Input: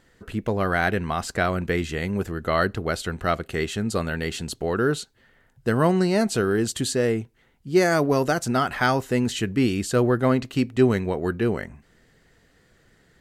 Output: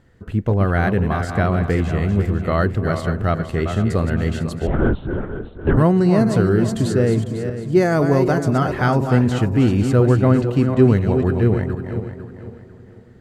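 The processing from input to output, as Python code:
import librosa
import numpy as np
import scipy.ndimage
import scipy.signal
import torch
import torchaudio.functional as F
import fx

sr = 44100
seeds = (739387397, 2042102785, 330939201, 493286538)

y = fx.reverse_delay_fb(x, sr, ms=250, feedback_pct=55, wet_db=-7.0)
y = fx.quant_float(y, sr, bits=6)
y = fx.peak_eq(y, sr, hz=95.0, db=9.5, octaves=1.7)
y = fx.echo_wet_lowpass(y, sr, ms=275, feedback_pct=67, hz=1200.0, wet_db=-20)
y = fx.lpc_vocoder(y, sr, seeds[0], excitation='whisper', order=8, at=(4.67, 5.77))
y = fx.high_shelf(y, sr, hz=2100.0, db=-10.0)
y = y * librosa.db_to_amplitude(2.5)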